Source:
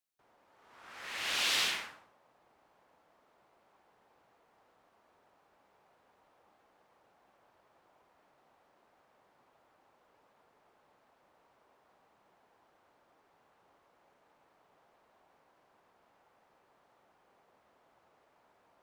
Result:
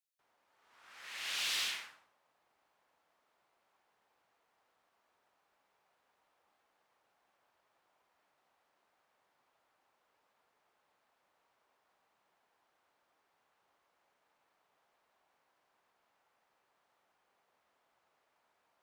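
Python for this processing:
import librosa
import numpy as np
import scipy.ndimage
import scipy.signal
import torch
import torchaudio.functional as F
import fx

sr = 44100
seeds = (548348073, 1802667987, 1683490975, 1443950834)

y = fx.tilt_shelf(x, sr, db=-5.5, hz=970.0)
y = np.clip(10.0 ** (21.0 / 20.0) * y, -1.0, 1.0) / 10.0 ** (21.0 / 20.0)
y = y * librosa.db_to_amplitude(-8.5)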